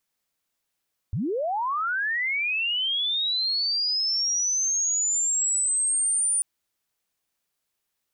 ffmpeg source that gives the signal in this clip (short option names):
-f lavfi -i "aevalsrc='pow(10,(-24+3.5*t/5.29)/20)*sin(2*PI*(78*t+9322*t*t/(2*5.29)))':d=5.29:s=44100"